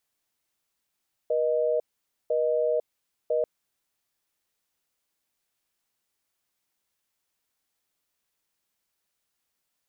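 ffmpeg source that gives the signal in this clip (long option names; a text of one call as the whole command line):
ffmpeg -f lavfi -i "aevalsrc='0.0596*(sin(2*PI*480*t)+sin(2*PI*620*t))*clip(min(mod(t,1),0.5-mod(t,1))/0.005,0,1)':duration=2.14:sample_rate=44100" out.wav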